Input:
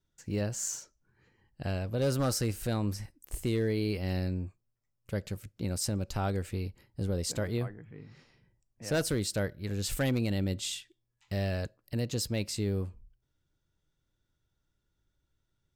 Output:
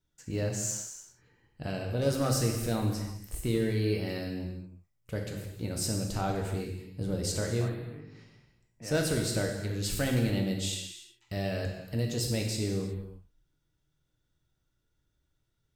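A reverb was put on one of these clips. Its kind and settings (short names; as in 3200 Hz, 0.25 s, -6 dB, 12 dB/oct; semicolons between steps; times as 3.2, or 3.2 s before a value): non-linear reverb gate 0.39 s falling, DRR 1 dB; gain -1 dB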